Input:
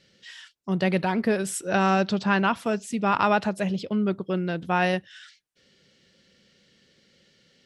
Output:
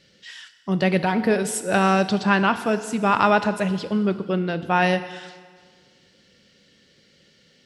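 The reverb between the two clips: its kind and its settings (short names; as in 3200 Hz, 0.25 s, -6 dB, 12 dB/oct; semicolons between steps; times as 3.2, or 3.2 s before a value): FDN reverb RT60 1.7 s, low-frequency decay 1×, high-frequency decay 0.9×, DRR 10 dB; gain +3.5 dB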